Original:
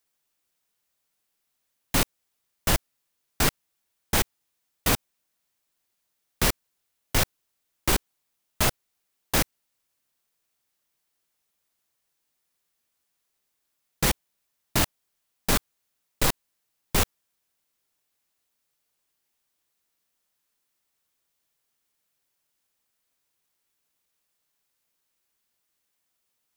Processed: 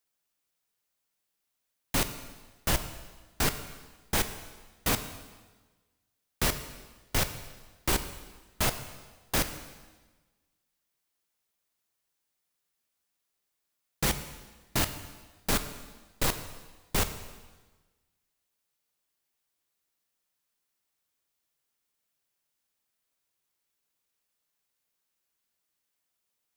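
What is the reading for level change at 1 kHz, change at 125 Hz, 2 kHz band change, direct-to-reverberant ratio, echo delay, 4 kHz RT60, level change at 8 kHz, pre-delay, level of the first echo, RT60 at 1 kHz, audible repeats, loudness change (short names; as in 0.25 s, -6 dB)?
-4.0 dB, -4.0 dB, -4.0 dB, 9.0 dB, none, 1.2 s, -4.0 dB, 11 ms, none, 1.3 s, none, -4.5 dB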